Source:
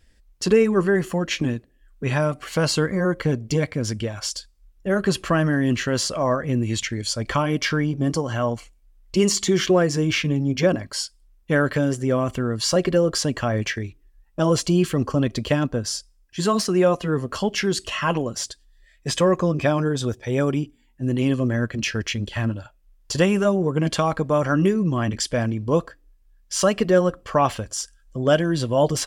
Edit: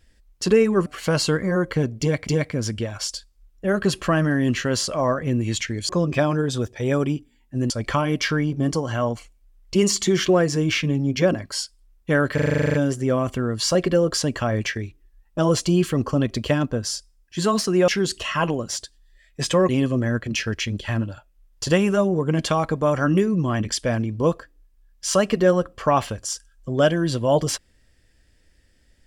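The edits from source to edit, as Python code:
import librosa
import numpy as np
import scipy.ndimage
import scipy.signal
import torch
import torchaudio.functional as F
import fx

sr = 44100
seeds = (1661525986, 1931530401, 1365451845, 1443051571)

y = fx.edit(x, sr, fx.cut(start_s=0.86, length_s=1.49),
    fx.repeat(start_s=3.49, length_s=0.27, count=2),
    fx.stutter(start_s=11.75, slice_s=0.04, count=11),
    fx.cut(start_s=16.89, length_s=0.66),
    fx.move(start_s=19.36, length_s=1.81, to_s=7.11), tone=tone)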